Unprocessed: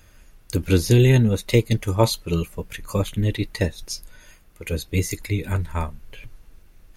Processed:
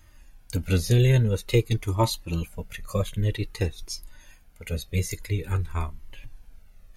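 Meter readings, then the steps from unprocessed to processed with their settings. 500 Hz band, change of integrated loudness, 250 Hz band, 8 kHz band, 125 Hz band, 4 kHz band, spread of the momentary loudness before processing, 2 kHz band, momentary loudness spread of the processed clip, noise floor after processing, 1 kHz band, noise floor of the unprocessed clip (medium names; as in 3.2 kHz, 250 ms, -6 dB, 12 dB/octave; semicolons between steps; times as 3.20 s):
-5.5 dB, -4.5 dB, -7.0 dB, -4.5 dB, -3.0 dB, -4.0 dB, 16 LU, -5.0 dB, 16 LU, -53 dBFS, -2.5 dB, -52 dBFS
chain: Shepard-style flanger falling 0.5 Hz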